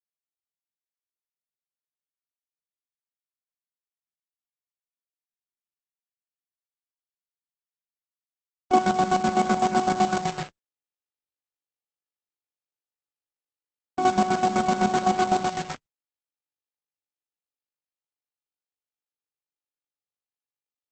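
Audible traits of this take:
a quantiser's noise floor 6 bits, dither none
chopped level 7.9 Hz, depth 65%, duty 40%
Opus

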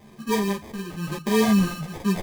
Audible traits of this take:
phaser sweep stages 12, 0.96 Hz, lowest notch 540–1,200 Hz
aliases and images of a low sample rate 1,400 Hz, jitter 0%
a shimmering, thickened sound

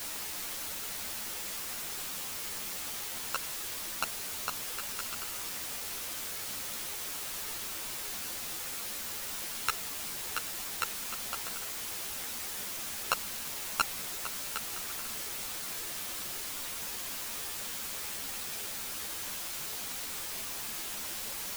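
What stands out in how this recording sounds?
a buzz of ramps at a fixed pitch in blocks of 32 samples
tremolo triangle 7.7 Hz, depth 65%
a quantiser's noise floor 6 bits, dither triangular
a shimmering, thickened sound

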